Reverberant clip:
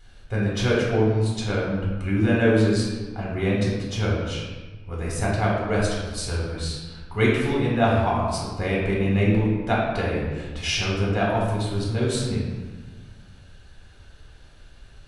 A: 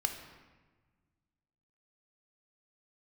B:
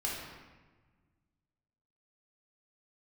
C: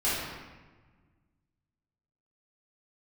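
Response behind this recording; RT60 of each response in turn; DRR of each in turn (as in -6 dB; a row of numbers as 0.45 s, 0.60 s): B; 1.3 s, 1.3 s, 1.3 s; 4.5 dB, -5.0 dB, -11.5 dB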